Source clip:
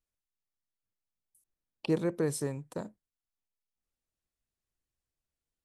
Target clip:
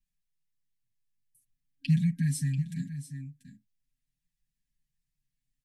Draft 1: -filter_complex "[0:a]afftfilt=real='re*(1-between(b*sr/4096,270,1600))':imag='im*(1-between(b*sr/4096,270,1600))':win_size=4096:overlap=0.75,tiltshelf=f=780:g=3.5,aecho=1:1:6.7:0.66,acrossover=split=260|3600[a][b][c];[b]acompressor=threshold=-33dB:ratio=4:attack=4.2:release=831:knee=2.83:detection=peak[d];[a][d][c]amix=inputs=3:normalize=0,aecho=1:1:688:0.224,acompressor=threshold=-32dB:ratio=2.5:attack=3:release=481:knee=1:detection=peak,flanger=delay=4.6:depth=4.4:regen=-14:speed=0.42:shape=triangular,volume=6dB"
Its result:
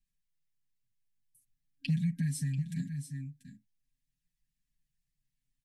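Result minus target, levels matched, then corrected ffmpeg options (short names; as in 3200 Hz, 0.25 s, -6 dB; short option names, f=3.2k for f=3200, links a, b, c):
compressor: peak gain reduction +6.5 dB
-filter_complex "[0:a]afftfilt=real='re*(1-between(b*sr/4096,270,1600))':imag='im*(1-between(b*sr/4096,270,1600))':win_size=4096:overlap=0.75,tiltshelf=f=780:g=3.5,aecho=1:1:6.7:0.66,acrossover=split=260|3600[a][b][c];[b]acompressor=threshold=-33dB:ratio=4:attack=4.2:release=831:knee=2.83:detection=peak[d];[a][d][c]amix=inputs=3:normalize=0,aecho=1:1:688:0.224,flanger=delay=4.6:depth=4.4:regen=-14:speed=0.42:shape=triangular,volume=6dB"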